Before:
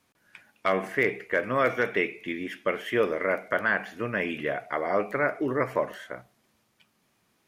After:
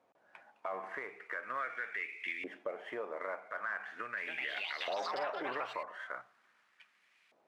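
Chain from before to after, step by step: CVSD 64 kbps; compressor 12:1, threshold -34 dBFS, peak gain reduction 15.5 dB; LFO band-pass saw up 0.41 Hz 600–2400 Hz; 3.85–6.07 echoes that change speed 0.317 s, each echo +5 st, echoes 3; limiter -35 dBFS, peak gain reduction 8.5 dB; gain +7.5 dB

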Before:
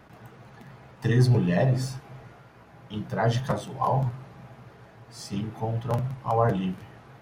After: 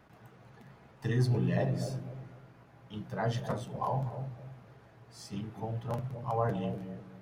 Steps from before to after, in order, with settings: analogue delay 0.248 s, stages 1024, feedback 32%, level -7 dB; gain -8 dB

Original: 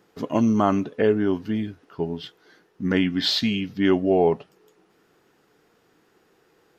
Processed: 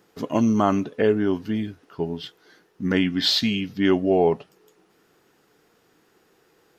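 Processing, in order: high shelf 4700 Hz +5 dB

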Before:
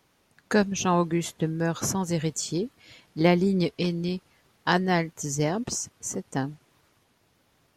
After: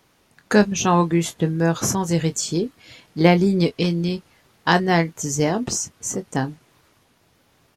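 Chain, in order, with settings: doubler 24 ms -11 dB; gain +5.5 dB

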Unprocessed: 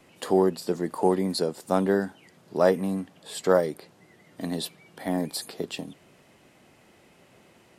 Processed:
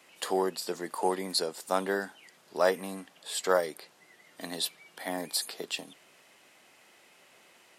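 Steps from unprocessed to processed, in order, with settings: HPF 1300 Hz 6 dB/oct; gain +3 dB

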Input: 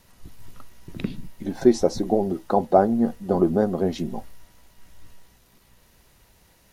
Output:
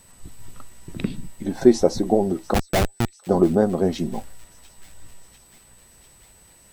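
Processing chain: 2.54–3.27 Schmitt trigger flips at -17 dBFS; thin delay 0.695 s, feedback 72%, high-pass 2200 Hz, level -20 dB; whine 8000 Hz -55 dBFS; gain +2.5 dB

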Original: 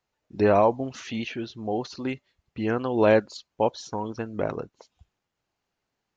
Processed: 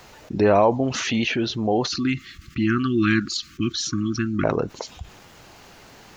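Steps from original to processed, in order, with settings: 1.89–4.44 brick-wall FIR band-stop 370–1100 Hz; fast leveller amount 50%; gain +2 dB

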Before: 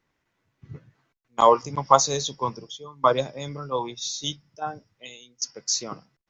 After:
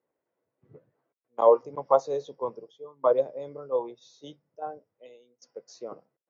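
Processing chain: band-pass 510 Hz, Q 2.6; gain +2.5 dB

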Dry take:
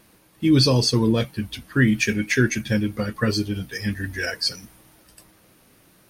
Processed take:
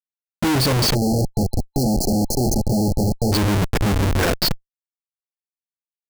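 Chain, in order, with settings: Wiener smoothing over 41 samples; Schmitt trigger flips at -34 dBFS; spectral delete 0.95–3.33, 870–4100 Hz; gain +6.5 dB

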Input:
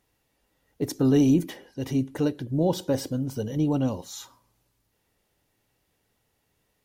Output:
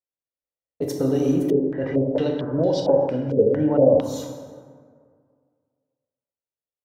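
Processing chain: gate -44 dBFS, range -37 dB; bell 560 Hz +12 dB 0.81 oct; compressor 3:1, threshold -20 dBFS, peak gain reduction 7.5 dB; plate-style reverb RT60 2 s, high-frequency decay 0.45×, DRR 0 dB; 1.5–4.01 stepped low-pass 4.4 Hz 420–4900 Hz; gain -1.5 dB

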